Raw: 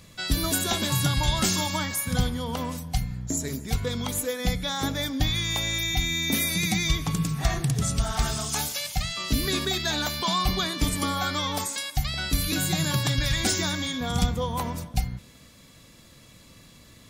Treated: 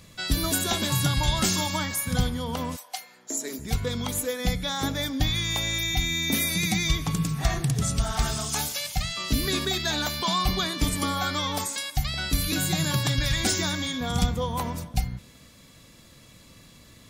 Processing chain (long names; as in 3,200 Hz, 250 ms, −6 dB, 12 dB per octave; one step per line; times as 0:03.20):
0:02.75–0:03.58: high-pass filter 680 Hz → 240 Hz 24 dB per octave